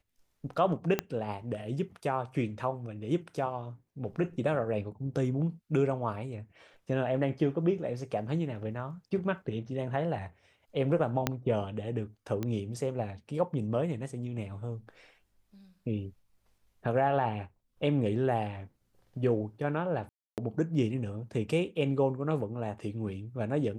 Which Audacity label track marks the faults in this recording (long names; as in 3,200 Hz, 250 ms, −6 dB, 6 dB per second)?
0.990000	0.990000	click −13 dBFS
11.270000	11.270000	click −11 dBFS
12.430000	12.430000	click −20 dBFS
20.090000	20.380000	drop-out 288 ms